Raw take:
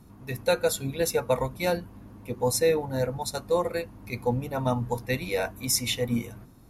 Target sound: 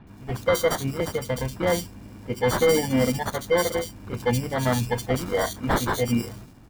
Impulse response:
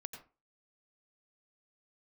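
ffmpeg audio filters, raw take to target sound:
-filter_complex "[0:a]asettb=1/sr,asplit=3[link_01][link_02][link_03];[link_01]atrim=end=1.004[link_04];[link_02]atrim=start=1:end=1.6,asetpts=PTS-STARTPTS,afade=type=in:duration=0.004:curve=qsin,afade=type=out:start_time=0.596:duration=0.004:curve=qsin,acrossover=split=340[link_05][link_06];[link_06]acompressor=threshold=-33dB:ratio=6[link_07];[link_05][link_07]amix=inputs=2:normalize=0[link_08];[link_03]atrim=start=1.596[link_09];[link_04][link_08]acrossfade=duration=0.004:curve1=hsin:curve2=qsin[link_10];[link_10][link_09]acrossfade=duration=0.004:curve1=qsin:curve2=hsin,asettb=1/sr,asplit=3[link_11][link_12][link_13];[link_11]atrim=end=2.604[link_14];[link_12]atrim=start=2.6:end=3.19,asetpts=PTS-STARTPTS,afade=type=in:duration=0.004:curve=qsin,afade=type=out:start_time=0.586:duration=0.004:curve=qsin,equalizer=frequency=240:width=3.4:gain=12.5[link_15];[link_13]atrim=start=3.186[link_16];[link_14][link_15]acrossfade=duration=0.004:curve1=hsin:curve2=qsin[link_17];[link_17][link_16]acrossfade=duration=0.004:curve1=qsin:curve2=hsin,acrusher=samples=17:mix=1:aa=0.000001,volume=18dB,asoftclip=hard,volume=-18dB,acrossover=split=3300[link_18][link_19];[link_19]adelay=70[link_20];[link_18][link_20]amix=inputs=2:normalize=0,volume=4dB"

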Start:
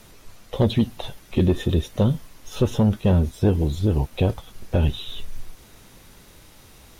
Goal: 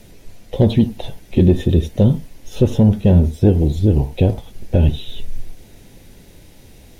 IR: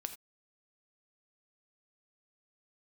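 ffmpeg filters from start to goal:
-filter_complex "[0:a]asplit=2[link_01][link_02];[link_02]lowpass=1100[link_03];[1:a]atrim=start_sample=2205,lowpass=frequency=2300:width=0.5412,lowpass=frequency=2300:width=1.3066[link_04];[link_03][link_04]afir=irnorm=-1:irlink=0,volume=3.5dB[link_05];[link_01][link_05]amix=inputs=2:normalize=0"

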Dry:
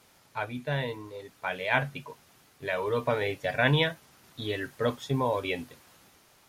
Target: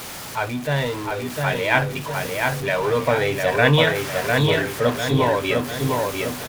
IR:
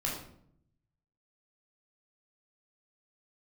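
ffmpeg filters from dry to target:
-filter_complex "[0:a]aeval=exprs='val(0)+0.5*0.0168*sgn(val(0))':channel_layout=same,asettb=1/sr,asplit=3[link_01][link_02][link_03];[link_01]atrim=end=3.874[link_04];[link_02]atrim=start=3.87:end=4.42,asetpts=PTS-STARTPTS,afade=type=in:duration=0.004:curve=qsin,afade=type=out:start_time=0.546:duration=0.004:curve=qsin,equalizer=frequency=1800:width=0.71:gain=7[link_05];[link_03]atrim=start=4.416[link_06];[link_04][link_05]acrossfade=duration=0.004:curve1=hsin:curve2=qsin[link_07];[link_07][link_06]acrossfade=duration=0.004:curve1=qsin:curve2=hsin,asplit=2[link_08][link_09];[link_09]adelay=703,lowpass=frequency=3200:poles=1,volume=-3dB,asplit=2[link_10][link_11];[link_11]adelay=703,lowpass=frequency=3200:poles=1,volume=0.51,asplit=2[link_12][link_13];[link_13]adelay=703,lowpass=frequency=3200:poles=1,volume=0.51,asplit=2[link_14][link_15];[link_15]adelay=703,lowpass=frequency=3200:poles=1,volume=0.51,asplit=2[link_16][link_17];[link_17]adelay=703,lowpass=frequency=3200:poles=1,volume=0.51,asplit=2[link_18][link_19];[link_19]adelay=703,lowpass=frequency=3200:poles=1,volume=0.51,asplit=2[link_20][link_21];[link_21]adelay=703,lowpass=frequency=3200:poles=1,volume=0.51[link_22];[link_08][link_10][link_12][link_14][link_16][link_18][link_20][link_22]amix=inputs=8:normalize=0,volume=6.5dB"

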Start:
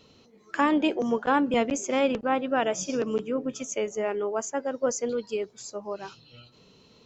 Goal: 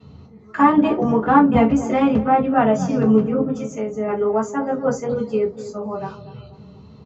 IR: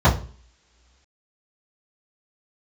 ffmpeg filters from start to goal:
-filter_complex "[0:a]asettb=1/sr,asplit=3[link_01][link_02][link_03];[link_01]atrim=end=3.484[link_04];[link_02]atrim=start=3.48:end=4.08,asetpts=PTS-STARTPTS,afade=type=in:duration=0.004:curve=qsin,afade=type=out:start_time=0.596:duration=0.004:curve=qsin,acompressor=threshold=-31dB:ratio=6[link_05];[link_03]atrim=start=4.076[link_06];[link_04][link_05]acrossfade=duration=0.004:curve1=hsin:curve2=qsin[link_07];[link_07][link_06]acrossfade=duration=0.004:curve1=qsin:curve2=hsin,asplit=2[link_08][link_09];[link_09]adelay=243,lowpass=frequency=1000:poles=1,volume=-13dB,asplit=2[link_10][link_11];[link_11]adelay=243,lowpass=frequency=1000:poles=1,volume=0.54,asplit=2[link_12][link_13];[link_13]adelay=243,lowpass=frequency=1000:poles=1,volume=0.54,asplit=2[link_14][link_15];[link_15]adelay=243,lowpass=frequency=1000:poles=1,volume=0.54,asplit=2[link_16][link_17];[link_17]adelay=243,lowpass=frequency=1000:poles=1,volume=0.54,asplit=2[link_18][link_19];[link_19]adelay=243,lowpass=frequency=1000:poles=1,volume=0.54[link_20];[link_08][link_10][link_12][link_14][link_16][link_18][link_20]amix=inputs=7:normalize=0[link_21];[1:a]atrim=start_sample=2205,atrim=end_sample=4410,asetrate=52920,aresample=44100[link_22];[link_21][link_22]afir=irnorm=-1:irlink=0,volume=-15dB"

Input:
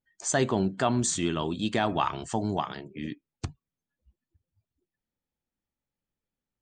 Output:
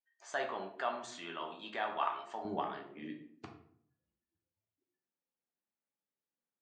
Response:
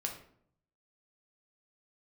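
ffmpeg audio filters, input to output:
-filter_complex "[0:a]asetnsamples=nb_out_samples=441:pad=0,asendcmd='2.45 highpass f 270',highpass=710,lowpass=2700[link_01];[1:a]atrim=start_sample=2205[link_02];[link_01][link_02]afir=irnorm=-1:irlink=0,volume=-6.5dB"

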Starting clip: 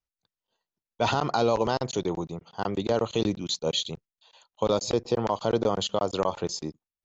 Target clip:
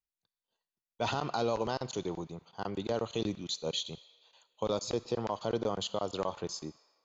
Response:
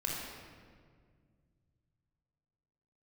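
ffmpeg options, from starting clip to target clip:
-filter_complex "[0:a]asplit=2[link_01][link_02];[link_02]highpass=1200[link_03];[1:a]atrim=start_sample=2205,asetrate=42336,aresample=44100,lowshelf=frequency=400:gain=-10[link_04];[link_03][link_04]afir=irnorm=-1:irlink=0,volume=-15dB[link_05];[link_01][link_05]amix=inputs=2:normalize=0,volume=-7.5dB"

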